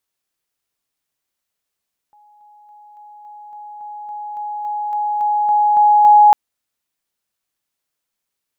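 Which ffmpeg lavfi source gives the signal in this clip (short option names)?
-f lavfi -i "aevalsrc='pow(10,(-47+3*floor(t/0.28))/20)*sin(2*PI*836*t)':d=4.2:s=44100"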